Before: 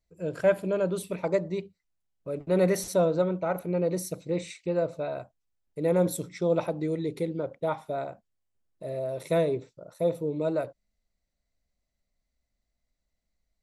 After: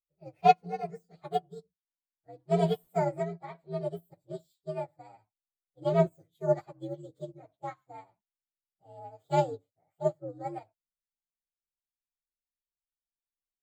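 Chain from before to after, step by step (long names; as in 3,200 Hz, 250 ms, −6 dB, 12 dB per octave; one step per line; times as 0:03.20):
partials spread apart or drawn together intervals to 125%
expander for the loud parts 2.5 to 1, over −39 dBFS
level +5.5 dB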